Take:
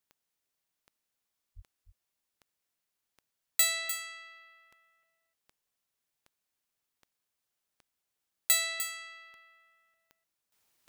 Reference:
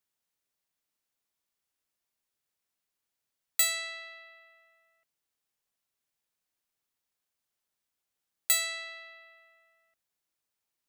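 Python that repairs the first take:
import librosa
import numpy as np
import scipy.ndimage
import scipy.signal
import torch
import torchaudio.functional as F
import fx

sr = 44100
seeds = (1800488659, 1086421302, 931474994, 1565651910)

y = fx.fix_declick_ar(x, sr, threshold=10.0)
y = fx.fix_deplosive(y, sr, at_s=(1.55,))
y = fx.fix_echo_inverse(y, sr, delay_ms=301, level_db=-10.0)
y = fx.gain(y, sr, db=fx.steps((0.0, 0.0), (10.52, -11.5)))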